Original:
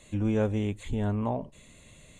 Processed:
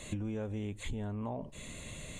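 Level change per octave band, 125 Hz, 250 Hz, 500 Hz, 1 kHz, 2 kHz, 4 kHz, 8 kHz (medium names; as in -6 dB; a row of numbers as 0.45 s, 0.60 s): -8.5 dB, -9.0 dB, -10.5 dB, -9.5 dB, -4.0 dB, 0.0 dB, +4.5 dB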